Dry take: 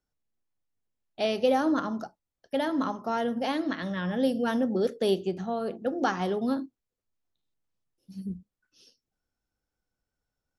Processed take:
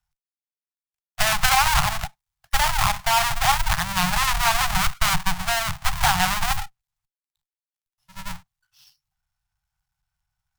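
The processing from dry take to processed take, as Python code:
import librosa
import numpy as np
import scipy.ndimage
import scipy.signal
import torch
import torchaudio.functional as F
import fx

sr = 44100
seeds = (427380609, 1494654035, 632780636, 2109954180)

p1 = fx.halfwave_hold(x, sr)
p2 = fx.cheby_harmonics(p1, sr, harmonics=(6, 7), levels_db=(-7, -33), full_scale_db=-12.5)
p3 = fx.quant_dither(p2, sr, seeds[0], bits=6, dither='none')
p4 = p2 + (p3 * librosa.db_to_amplitude(-7.0))
p5 = scipy.signal.sosfilt(scipy.signal.ellip(3, 1.0, 40, [150.0, 780.0], 'bandstop', fs=sr, output='sos'), p4)
y = p5 * librosa.db_to_amplitude(3.0)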